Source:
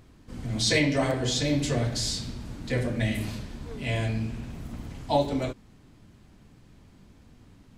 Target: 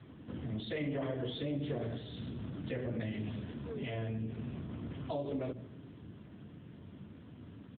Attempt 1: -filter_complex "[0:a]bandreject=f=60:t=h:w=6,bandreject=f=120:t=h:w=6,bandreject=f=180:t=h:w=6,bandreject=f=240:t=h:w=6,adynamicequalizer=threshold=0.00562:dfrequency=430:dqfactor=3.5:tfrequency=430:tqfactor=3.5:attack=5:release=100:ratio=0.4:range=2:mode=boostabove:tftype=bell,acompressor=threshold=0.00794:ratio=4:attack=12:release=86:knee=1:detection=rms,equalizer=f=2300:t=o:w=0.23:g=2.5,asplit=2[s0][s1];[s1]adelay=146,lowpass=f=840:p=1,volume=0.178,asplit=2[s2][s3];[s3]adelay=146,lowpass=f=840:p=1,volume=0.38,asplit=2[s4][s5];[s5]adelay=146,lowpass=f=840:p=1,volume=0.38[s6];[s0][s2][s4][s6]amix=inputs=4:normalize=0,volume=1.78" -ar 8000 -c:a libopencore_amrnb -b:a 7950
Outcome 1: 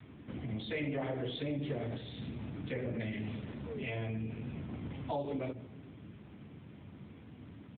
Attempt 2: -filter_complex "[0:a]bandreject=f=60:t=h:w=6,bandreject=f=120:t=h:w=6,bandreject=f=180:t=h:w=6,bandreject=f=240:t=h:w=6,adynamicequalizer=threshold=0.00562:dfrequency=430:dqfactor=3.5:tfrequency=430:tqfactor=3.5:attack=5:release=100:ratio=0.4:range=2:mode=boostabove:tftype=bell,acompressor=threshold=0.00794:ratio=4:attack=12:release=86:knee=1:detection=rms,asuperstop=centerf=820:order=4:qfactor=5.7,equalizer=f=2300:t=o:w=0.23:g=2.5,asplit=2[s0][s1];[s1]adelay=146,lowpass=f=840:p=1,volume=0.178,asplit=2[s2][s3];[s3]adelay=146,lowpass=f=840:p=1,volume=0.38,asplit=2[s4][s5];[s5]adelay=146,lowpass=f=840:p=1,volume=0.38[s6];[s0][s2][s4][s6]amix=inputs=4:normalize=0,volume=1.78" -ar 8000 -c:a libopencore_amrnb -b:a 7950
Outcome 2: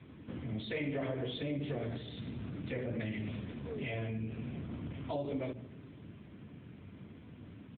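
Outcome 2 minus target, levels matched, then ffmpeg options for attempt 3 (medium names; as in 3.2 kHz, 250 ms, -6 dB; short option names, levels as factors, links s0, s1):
2 kHz band +3.0 dB
-filter_complex "[0:a]bandreject=f=60:t=h:w=6,bandreject=f=120:t=h:w=6,bandreject=f=180:t=h:w=6,bandreject=f=240:t=h:w=6,adynamicequalizer=threshold=0.00562:dfrequency=430:dqfactor=3.5:tfrequency=430:tqfactor=3.5:attack=5:release=100:ratio=0.4:range=2:mode=boostabove:tftype=bell,acompressor=threshold=0.00794:ratio=4:attack=12:release=86:knee=1:detection=rms,asuperstop=centerf=820:order=4:qfactor=5.7,equalizer=f=2300:t=o:w=0.23:g=-6,asplit=2[s0][s1];[s1]adelay=146,lowpass=f=840:p=1,volume=0.178,asplit=2[s2][s3];[s3]adelay=146,lowpass=f=840:p=1,volume=0.38,asplit=2[s4][s5];[s5]adelay=146,lowpass=f=840:p=1,volume=0.38[s6];[s0][s2][s4][s6]amix=inputs=4:normalize=0,volume=1.78" -ar 8000 -c:a libopencore_amrnb -b:a 7950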